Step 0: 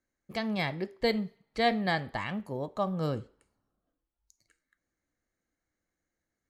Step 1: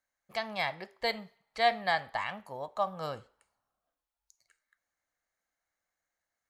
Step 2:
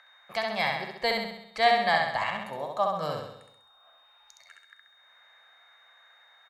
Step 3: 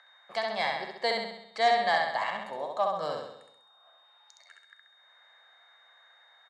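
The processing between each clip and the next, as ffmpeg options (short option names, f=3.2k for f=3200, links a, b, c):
-af "lowshelf=f=500:t=q:w=1.5:g=-12"
-filter_complex "[0:a]acrossover=split=140|700|2500[a][b][c][d];[c]acompressor=mode=upward:threshold=-44dB:ratio=2.5[e];[a][b][e][d]amix=inputs=4:normalize=0,aeval=exprs='val(0)+0.000631*sin(2*PI*3700*n/s)':c=same,aecho=1:1:66|132|198|264|330|396|462:0.668|0.361|0.195|0.105|0.0568|0.0307|0.0166,volume=3.5dB"
-af "asoftclip=type=tanh:threshold=-13.5dB,highpass=270,equalizer=f=1.3k:t=q:w=4:g=-3,equalizer=f=2.5k:t=q:w=4:g=-8,equalizer=f=6.1k:t=q:w=4:g=-4,lowpass=f=8.7k:w=0.5412,lowpass=f=8.7k:w=1.3066"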